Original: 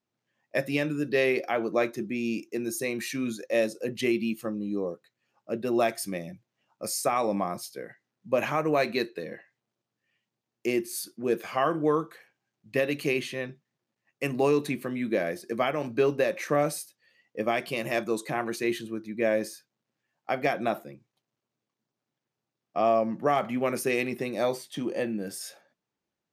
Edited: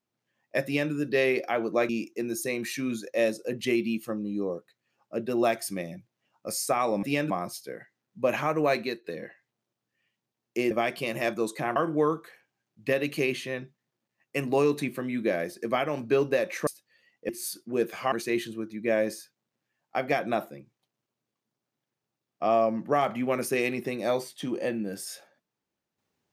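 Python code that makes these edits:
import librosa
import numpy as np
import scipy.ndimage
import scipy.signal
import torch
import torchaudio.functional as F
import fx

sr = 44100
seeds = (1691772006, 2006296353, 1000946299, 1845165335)

y = fx.edit(x, sr, fx.duplicate(start_s=0.65, length_s=0.27, to_s=7.39),
    fx.cut(start_s=1.89, length_s=0.36),
    fx.fade_out_to(start_s=8.86, length_s=0.27, floor_db=-13.5),
    fx.swap(start_s=10.8, length_s=0.83, other_s=17.41, other_length_s=1.05),
    fx.cut(start_s=16.54, length_s=0.25), tone=tone)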